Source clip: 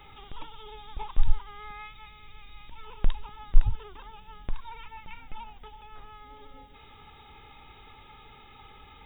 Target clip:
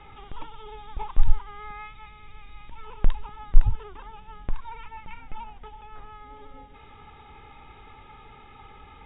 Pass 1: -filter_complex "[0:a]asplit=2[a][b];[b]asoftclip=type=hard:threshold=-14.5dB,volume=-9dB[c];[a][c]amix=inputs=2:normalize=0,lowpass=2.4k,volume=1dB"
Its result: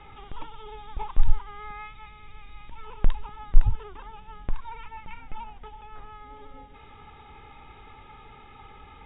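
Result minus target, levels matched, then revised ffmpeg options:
hard clip: distortion +9 dB
-filter_complex "[0:a]asplit=2[a][b];[b]asoftclip=type=hard:threshold=-8dB,volume=-9dB[c];[a][c]amix=inputs=2:normalize=0,lowpass=2.4k,volume=1dB"

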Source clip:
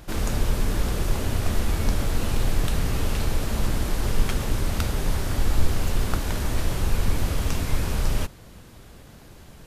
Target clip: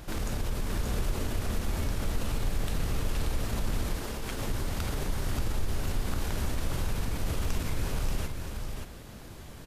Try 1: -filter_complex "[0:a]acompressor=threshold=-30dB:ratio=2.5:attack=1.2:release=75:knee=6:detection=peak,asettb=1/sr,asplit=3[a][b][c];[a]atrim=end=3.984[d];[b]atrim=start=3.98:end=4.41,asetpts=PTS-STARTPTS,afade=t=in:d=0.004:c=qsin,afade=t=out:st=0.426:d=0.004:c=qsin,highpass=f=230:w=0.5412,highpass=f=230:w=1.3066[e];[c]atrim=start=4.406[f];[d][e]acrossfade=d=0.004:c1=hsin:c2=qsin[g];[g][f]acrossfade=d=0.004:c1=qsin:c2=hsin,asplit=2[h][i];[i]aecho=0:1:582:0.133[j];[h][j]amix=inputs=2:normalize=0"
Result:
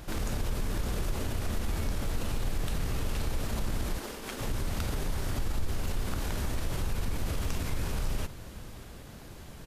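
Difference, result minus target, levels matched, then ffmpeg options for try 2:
echo-to-direct -12 dB
-filter_complex "[0:a]acompressor=threshold=-30dB:ratio=2.5:attack=1.2:release=75:knee=6:detection=peak,asettb=1/sr,asplit=3[a][b][c];[a]atrim=end=3.984[d];[b]atrim=start=3.98:end=4.41,asetpts=PTS-STARTPTS,afade=t=in:d=0.004:c=qsin,afade=t=out:st=0.426:d=0.004:c=qsin,highpass=f=230:w=0.5412,highpass=f=230:w=1.3066[e];[c]atrim=start=4.406[f];[d][e]acrossfade=d=0.004:c1=hsin:c2=qsin[g];[g][f]acrossfade=d=0.004:c1=qsin:c2=hsin,asplit=2[h][i];[i]aecho=0:1:582:0.531[j];[h][j]amix=inputs=2:normalize=0"

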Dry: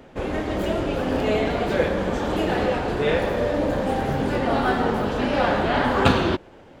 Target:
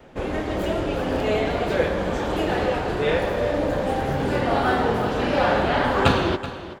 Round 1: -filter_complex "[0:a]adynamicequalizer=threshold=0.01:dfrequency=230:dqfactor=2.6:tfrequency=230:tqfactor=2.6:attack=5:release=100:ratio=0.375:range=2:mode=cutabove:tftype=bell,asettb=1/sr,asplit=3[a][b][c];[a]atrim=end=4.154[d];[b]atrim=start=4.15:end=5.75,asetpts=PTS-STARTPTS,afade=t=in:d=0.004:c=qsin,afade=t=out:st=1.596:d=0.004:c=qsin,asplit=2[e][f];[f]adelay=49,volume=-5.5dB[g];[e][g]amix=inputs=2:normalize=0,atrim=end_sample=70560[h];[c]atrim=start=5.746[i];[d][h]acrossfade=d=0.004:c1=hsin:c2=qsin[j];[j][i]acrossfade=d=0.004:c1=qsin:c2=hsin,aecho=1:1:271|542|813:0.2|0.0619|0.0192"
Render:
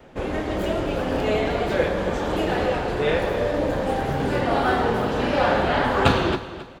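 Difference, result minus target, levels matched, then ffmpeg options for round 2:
echo 0.108 s early
-filter_complex "[0:a]adynamicequalizer=threshold=0.01:dfrequency=230:dqfactor=2.6:tfrequency=230:tqfactor=2.6:attack=5:release=100:ratio=0.375:range=2:mode=cutabove:tftype=bell,asettb=1/sr,asplit=3[a][b][c];[a]atrim=end=4.154[d];[b]atrim=start=4.15:end=5.75,asetpts=PTS-STARTPTS,afade=t=in:d=0.004:c=qsin,afade=t=out:st=1.596:d=0.004:c=qsin,asplit=2[e][f];[f]adelay=49,volume=-5.5dB[g];[e][g]amix=inputs=2:normalize=0,atrim=end_sample=70560[h];[c]atrim=start=5.746[i];[d][h]acrossfade=d=0.004:c1=hsin:c2=qsin[j];[j][i]acrossfade=d=0.004:c1=qsin:c2=hsin,aecho=1:1:379|758|1137:0.2|0.0619|0.0192"

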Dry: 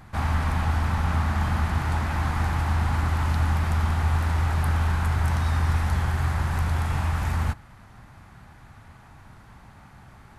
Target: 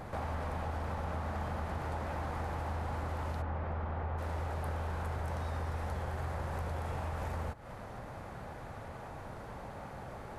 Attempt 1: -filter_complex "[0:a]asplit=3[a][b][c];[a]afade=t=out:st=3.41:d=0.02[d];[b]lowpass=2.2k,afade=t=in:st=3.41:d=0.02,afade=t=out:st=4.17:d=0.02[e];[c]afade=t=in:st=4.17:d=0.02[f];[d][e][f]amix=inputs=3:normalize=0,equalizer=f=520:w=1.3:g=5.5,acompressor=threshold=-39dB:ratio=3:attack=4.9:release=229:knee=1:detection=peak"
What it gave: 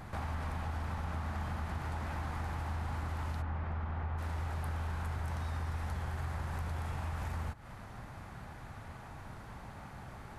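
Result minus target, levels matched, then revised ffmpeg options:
500 Hz band -7.0 dB
-filter_complex "[0:a]asplit=3[a][b][c];[a]afade=t=out:st=3.41:d=0.02[d];[b]lowpass=2.2k,afade=t=in:st=3.41:d=0.02,afade=t=out:st=4.17:d=0.02[e];[c]afade=t=in:st=4.17:d=0.02[f];[d][e][f]amix=inputs=3:normalize=0,equalizer=f=520:w=1.3:g=16.5,acompressor=threshold=-39dB:ratio=3:attack=4.9:release=229:knee=1:detection=peak"

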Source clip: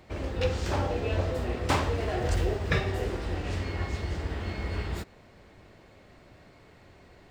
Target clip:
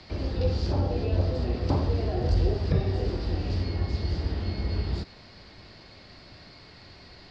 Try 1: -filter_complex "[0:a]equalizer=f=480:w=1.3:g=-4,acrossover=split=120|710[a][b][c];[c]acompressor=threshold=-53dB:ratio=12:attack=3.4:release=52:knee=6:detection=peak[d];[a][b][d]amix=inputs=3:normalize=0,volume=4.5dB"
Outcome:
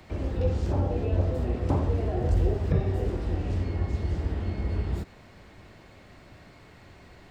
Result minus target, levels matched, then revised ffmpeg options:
4000 Hz band -10.0 dB
-filter_complex "[0:a]equalizer=f=480:w=1.3:g=-4,acrossover=split=120|710[a][b][c];[c]acompressor=threshold=-53dB:ratio=12:attack=3.4:release=52:knee=6:detection=peak,lowpass=f=4.7k:t=q:w=6.9[d];[a][b][d]amix=inputs=3:normalize=0,volume=4.5dB"

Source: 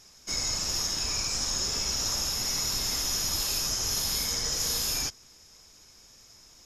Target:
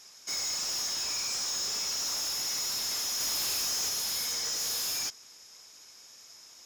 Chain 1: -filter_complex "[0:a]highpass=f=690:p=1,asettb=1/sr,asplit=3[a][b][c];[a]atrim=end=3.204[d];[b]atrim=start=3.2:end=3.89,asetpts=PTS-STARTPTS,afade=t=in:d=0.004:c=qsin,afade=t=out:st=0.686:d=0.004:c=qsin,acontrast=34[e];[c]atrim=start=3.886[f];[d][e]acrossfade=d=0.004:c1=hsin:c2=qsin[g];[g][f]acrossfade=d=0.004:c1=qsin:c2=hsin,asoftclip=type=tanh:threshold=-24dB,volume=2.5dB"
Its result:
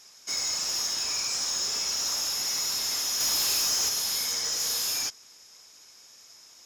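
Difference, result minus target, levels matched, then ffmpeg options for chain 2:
soft clip: distortion -6 dB
-filter_complex "[0:a]highpass=f=690:p=1,asettb=1/sr,asplit=3[a][b][c];[a]atrim=end=3.204[d];[b]atrim=start=3.2:end=3.89,asetpts=PTS-STARTPTS,afade=t=in:d=0.004:c=qsin,afade=t=out:st=0.686:d=0.004:c=qsin,acontrast=34[e];[c]atrim=start=3.886[f];[d][e]acrossfade=d=0.004:c1=hsin:c2=qsin[g];[g][f]acrossfade=d=0.004:c1=qsin:c2=hsin,asoftclip=type=tanh:threshold=-31.5dB,volume=2.5dB"

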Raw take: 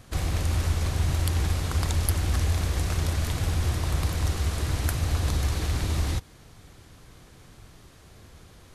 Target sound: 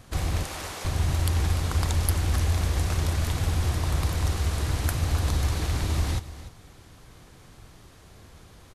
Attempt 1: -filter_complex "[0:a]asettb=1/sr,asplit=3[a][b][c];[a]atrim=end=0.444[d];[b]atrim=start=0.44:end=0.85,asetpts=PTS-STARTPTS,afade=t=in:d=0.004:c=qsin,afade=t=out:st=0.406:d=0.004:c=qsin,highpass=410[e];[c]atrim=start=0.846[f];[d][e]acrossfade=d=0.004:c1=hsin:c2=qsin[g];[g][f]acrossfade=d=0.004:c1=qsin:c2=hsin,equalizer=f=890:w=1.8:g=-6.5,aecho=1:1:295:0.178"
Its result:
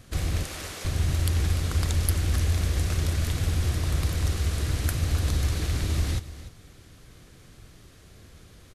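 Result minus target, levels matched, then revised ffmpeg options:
1000 Hz band -5.5 dB
-filter_complex "[0:a]asettb=1/sr,asplit=3[a][b][c];[a]atrim=end=0.444[d];[b]atrim=start=0.44:end=0.85,asetpts=PTS-STARTPTS,afade=t=in:d=0.004:c=qsin,afade=t=out:st=0.406:d=0.004:c=qsin,highpass=410[e];[c]atrim=start=0.846[f];[d][e]acrossfade=d=0.004:c1=hsin:c2=qsin[g];[g][f]acrossfade=d=0.004:c1=qsin:c2=hsin,equalizer=f=890:w=1.8:g=2,aecho=1:1:295:0.178"

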